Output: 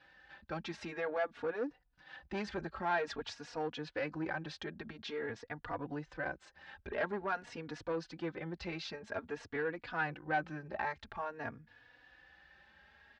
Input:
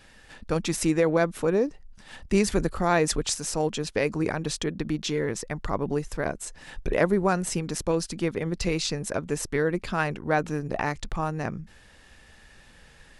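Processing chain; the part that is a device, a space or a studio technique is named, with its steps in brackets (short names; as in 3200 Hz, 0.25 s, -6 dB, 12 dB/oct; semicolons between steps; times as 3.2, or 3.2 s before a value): barber-pole flanger into a guitar amplifier (endless flanger 3.5 ms +0.49 Hz; soft clip -20 dBFS, distortion -15 dB; speaker cabinet 80–4300 Hz, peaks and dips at 130 Hz -6 dB, 190 Hz -8 dB, 400 Hz -4 dB, 820 Hz +5 dB, 1600 Hz +8 dB); gain -7.5 dB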